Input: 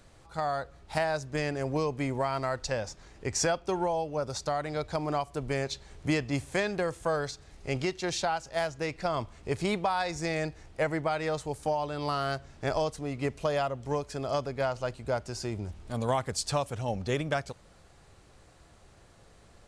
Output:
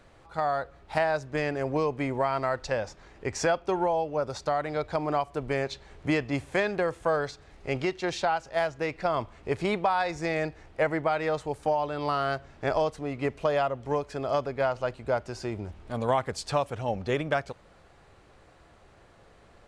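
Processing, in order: tone controls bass -5 dB, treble -11 dB; trim +3.5 dB

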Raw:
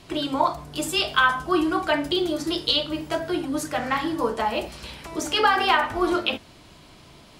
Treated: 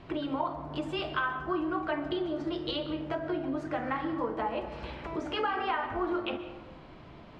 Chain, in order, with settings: low-pass 2 kHz 12 dB/octave; compression 2.5:1, threshold -33 dBFS, peak gain reduction 12.5 dB; reverberation RT60 1.7 s, pre-delay 95 ms, DRR 11 dB

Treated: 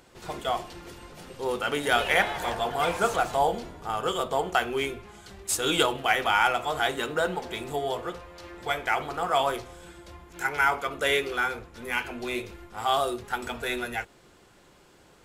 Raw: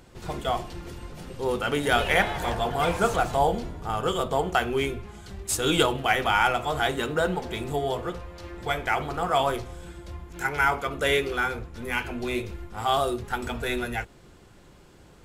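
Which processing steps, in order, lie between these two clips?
bass shelf 220 Hz -11.5 dB

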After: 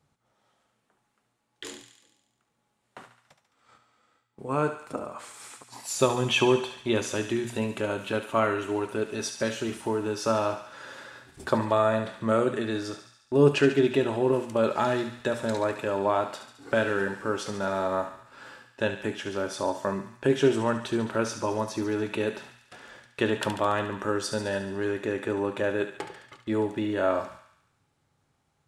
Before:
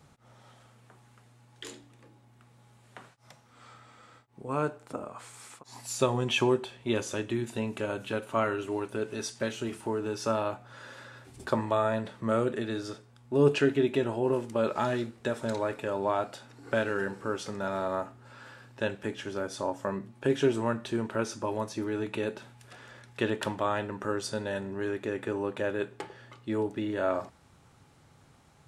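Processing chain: gate -50 dBFS, range -16 dB; hum notches 60/120/180/240 Hz; thinning echo 71 ms, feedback 66%, high-pass 850 Hz, level -8.5 dB; trim +3.5 dB

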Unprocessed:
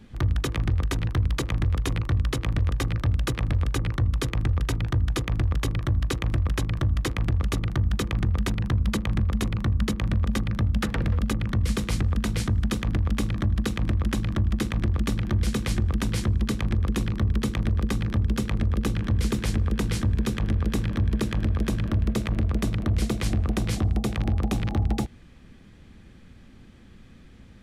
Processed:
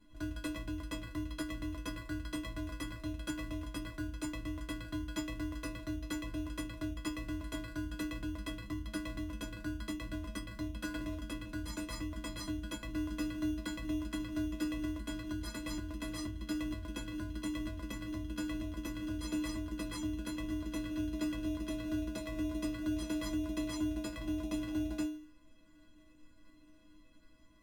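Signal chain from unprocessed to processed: inharmonic resonator 300 Hz, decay 0.56 s, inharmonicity 0.03; in parallel at -4 dB: sample-rate reducer 3.1 kHz, jitter 0%; on the sum: trim +5.5 dB; Opus 96 kbps 48 kHz

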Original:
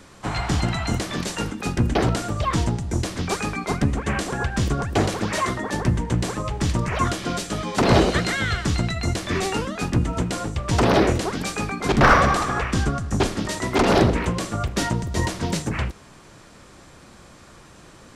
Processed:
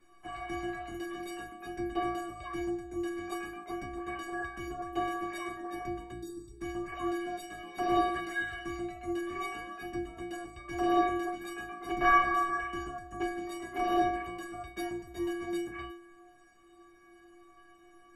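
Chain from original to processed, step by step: high-order bell 5.7 kHz -11 dB; time-frequency box 6.13–6.61 s, 440–3400 Hz -27 dB; inharmonic resonator 340 Hz, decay 0.81 s, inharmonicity 0.03; trim +8.5 dB

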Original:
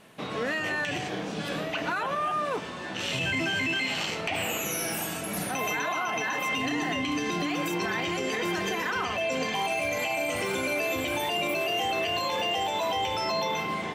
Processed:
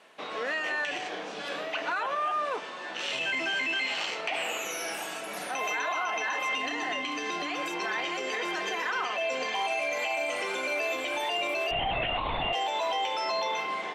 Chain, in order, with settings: high-pass 480 Hz 12 dB/octave; distance through air 56 m; 11.71–12.53 s: LPC vocoder at 8 kHz whisper

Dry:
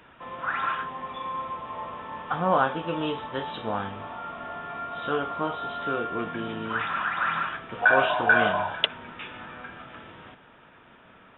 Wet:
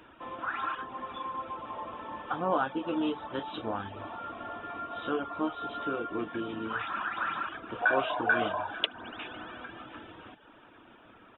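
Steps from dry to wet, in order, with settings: graphic EQ with 31 bands 160 Hz -8 dB, 315 Hz +9 dB, 2 kHz -5 dB; spring tank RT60 3.9 s, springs 59 ms, chirp 30 ms, DRR 13.5 dB; in parallel at -1 dB: compression, threshold -33 dBFS, peak gain reduction 17 dB; on the sum: reverb removal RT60 0.59 s; harmony voices -5 st -18 dB; trim -7 dB

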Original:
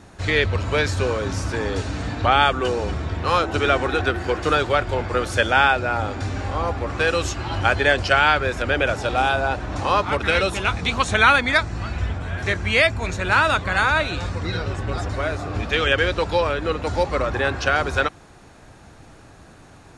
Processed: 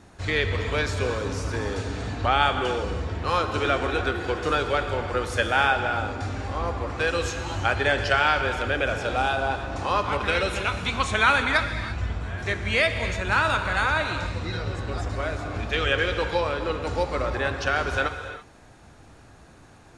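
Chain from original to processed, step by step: gated-style reverb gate 360 ms flat, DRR 6.5 dB; trim -5 dB

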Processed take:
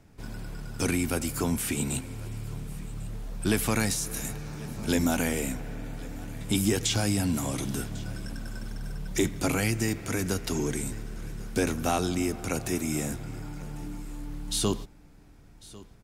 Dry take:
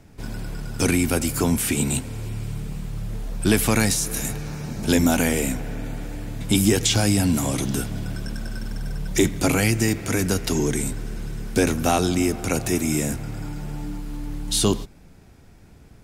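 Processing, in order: peaking EQ 1.2 kHz +2 dB; on a send: delay 1098 ms -20.5 dB; on the sum: trim -7 dB

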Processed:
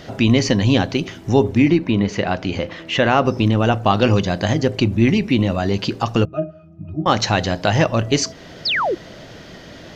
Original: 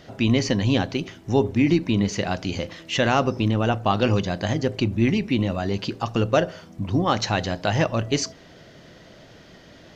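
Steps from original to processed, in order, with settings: 1.68–3.25 s: tone controls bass -3 dB, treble -12 dB; in parallel at -2 dB: compression, threshold -33 dBFS, peak gain reduction 18 dB; 6.25–7.06 s: on the sum: pitch-class resonator D#, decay 0.18 s; 8.65–8.95 s: painted sound fall 310–5500 Hz -23 dBFS; trim +4 dB

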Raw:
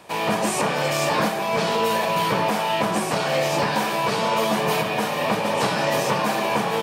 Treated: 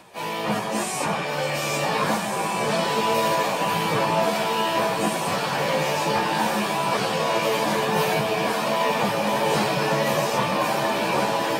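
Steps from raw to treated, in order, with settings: echo that smears into a reverb 909 ms, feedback 50%, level -3 dB; plain phase-vocoder stretch 1.7×

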